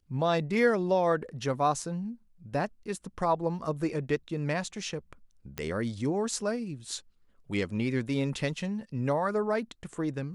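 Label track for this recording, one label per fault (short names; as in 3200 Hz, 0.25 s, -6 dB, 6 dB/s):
5.580000	5.580000	pop -18 dBFS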